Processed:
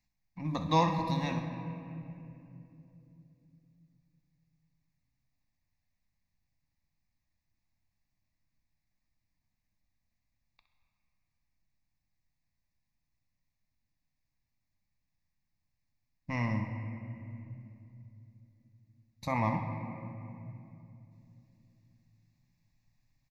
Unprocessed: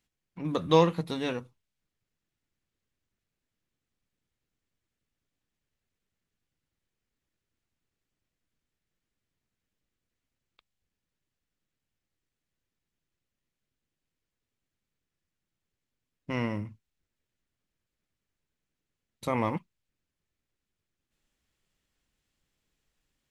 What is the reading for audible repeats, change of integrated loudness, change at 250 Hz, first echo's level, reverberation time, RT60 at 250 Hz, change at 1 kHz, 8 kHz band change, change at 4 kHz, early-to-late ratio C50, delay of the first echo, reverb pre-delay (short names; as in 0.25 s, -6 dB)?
1, -5.0 dB, -2.0 dB, -12.0 dB, 2.8 s, 4.2 s, +0.5 dB, n/a, -4.5 dB, 5.0 dB, 64 ms, 3 ms